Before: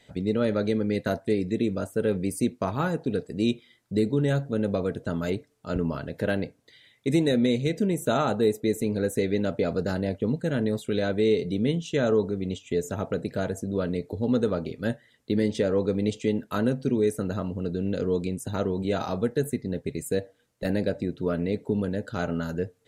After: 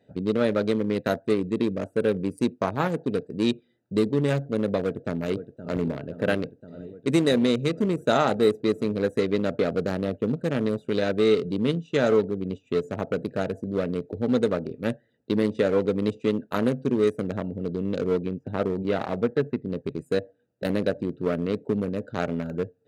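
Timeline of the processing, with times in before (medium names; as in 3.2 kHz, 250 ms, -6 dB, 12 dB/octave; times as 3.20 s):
4.80–5.82 s: echo throw 520 ms, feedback 75%, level -10.5 dB
18.05–19.68 s: low-pass 3.5 kHz 24 dB/octave
whole clip: local Wiener filter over 41 samples; high-pass 88 Hz; bass shelf 330 Hz -7.5 dB; trim +6 dB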